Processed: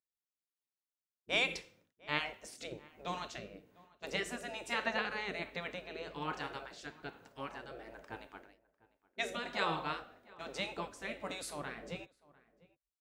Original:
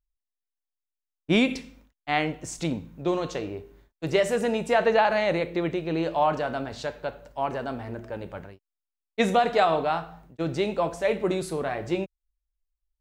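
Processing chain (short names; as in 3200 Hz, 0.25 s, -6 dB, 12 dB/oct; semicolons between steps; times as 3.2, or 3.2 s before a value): rotary speaker horn 1.2 Hz; spectral gate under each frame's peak -10 dB weak; low shelf 110 Hz -7 dB; outdoor echo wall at 120 m, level -22 dB; gain -3.5 dB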